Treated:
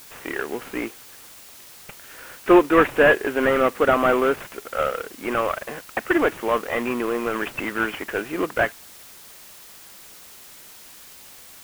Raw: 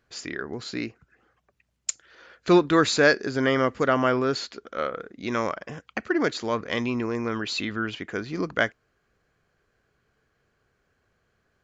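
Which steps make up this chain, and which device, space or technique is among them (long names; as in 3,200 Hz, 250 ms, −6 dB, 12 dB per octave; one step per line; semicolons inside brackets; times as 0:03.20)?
army field radio (band-pass filter 350–3,300 Hz; variable-slope delta modulation 16 kbit/s; white noise bed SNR 21 dB)
level +8 dB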